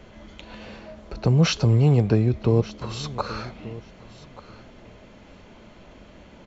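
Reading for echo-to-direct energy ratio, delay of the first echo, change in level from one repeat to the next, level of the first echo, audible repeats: -18.0 dB, 1183 ms, -16.5 dB, -18.0 dB, 2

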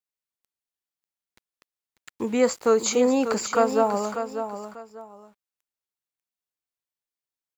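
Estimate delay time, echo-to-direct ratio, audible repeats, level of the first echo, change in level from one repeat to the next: 593 ms, -8.5 dB, 2, -9.0 dB, -11.5 dB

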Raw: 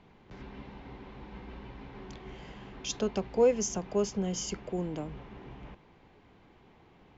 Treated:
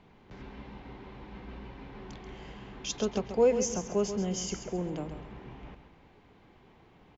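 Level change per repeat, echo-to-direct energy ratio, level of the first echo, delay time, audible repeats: -10.0 dB, -9.0 dB, -9.5 dB, 134 ms, 3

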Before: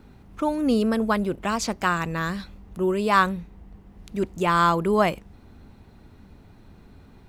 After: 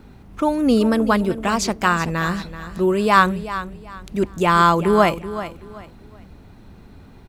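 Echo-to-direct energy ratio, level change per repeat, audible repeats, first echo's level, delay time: -12.5 dB, -11.5 dB, 2, -13.0 dB, 381 ms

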